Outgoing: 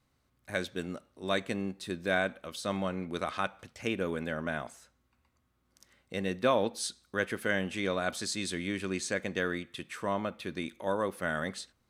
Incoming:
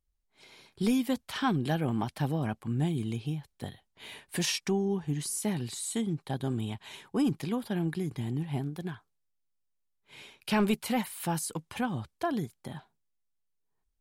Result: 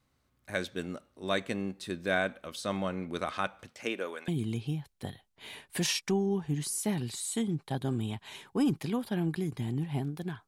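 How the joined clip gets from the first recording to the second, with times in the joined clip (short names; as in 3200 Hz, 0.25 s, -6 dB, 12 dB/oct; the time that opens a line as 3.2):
outgoing
3.7–4.28 HPF 150 Hz -> 960 Hz
4.28 switch to incoming from 2.87 s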